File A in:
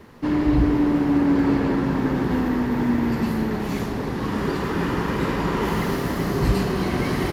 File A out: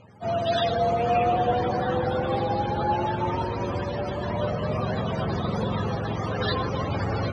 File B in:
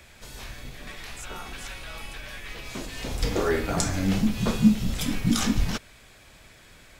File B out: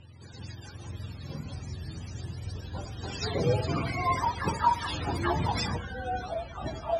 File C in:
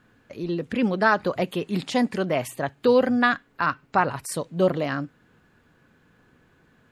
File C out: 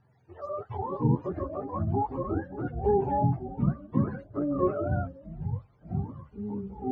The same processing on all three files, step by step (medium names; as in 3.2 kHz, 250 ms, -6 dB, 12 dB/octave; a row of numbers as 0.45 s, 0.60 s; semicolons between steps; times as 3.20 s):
spectrum inverted on a logarithmic axis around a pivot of 450 Hz; low-pass 5.4 kHz 12 dB/octave; ever faster or slower copies 330 ms, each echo -6 st, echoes 2, each echo -6 dB; peak normalisation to -12 dBFS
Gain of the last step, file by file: -2.5 dB, -1.0 dB, -5.5 dB